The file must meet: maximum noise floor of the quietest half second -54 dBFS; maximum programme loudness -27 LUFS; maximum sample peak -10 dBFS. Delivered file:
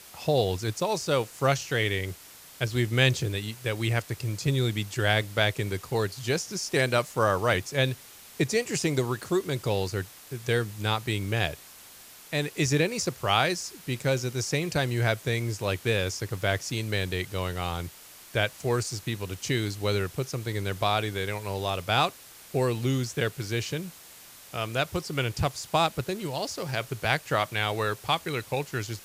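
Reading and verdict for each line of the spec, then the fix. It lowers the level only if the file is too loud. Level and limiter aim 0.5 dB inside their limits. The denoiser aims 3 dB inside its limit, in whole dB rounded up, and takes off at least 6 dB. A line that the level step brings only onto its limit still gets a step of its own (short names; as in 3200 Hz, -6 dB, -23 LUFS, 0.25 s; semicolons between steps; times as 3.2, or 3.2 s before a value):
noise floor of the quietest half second -49 dBFS: fail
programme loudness -28.0 LUFS: OK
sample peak -7.0 dBFS: fail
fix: denoiser 8 dB, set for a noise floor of -49 dBFS; limiter -10.5 dBFS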